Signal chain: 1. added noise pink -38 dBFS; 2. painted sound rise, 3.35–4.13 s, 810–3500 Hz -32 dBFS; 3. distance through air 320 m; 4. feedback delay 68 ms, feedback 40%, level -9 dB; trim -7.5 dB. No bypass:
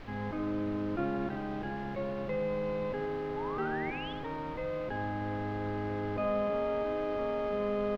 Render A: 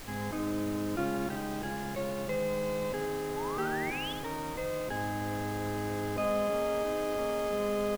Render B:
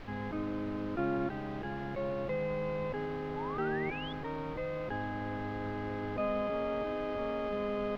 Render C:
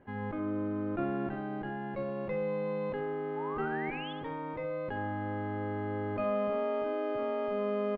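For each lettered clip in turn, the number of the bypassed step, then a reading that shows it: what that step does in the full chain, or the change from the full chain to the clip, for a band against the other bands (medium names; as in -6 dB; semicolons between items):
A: 3, 4 kHz band +6.5 dB; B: 4, echo-to-direct -8.0 dB to none; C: 1, 4 kHz band -1.5 dB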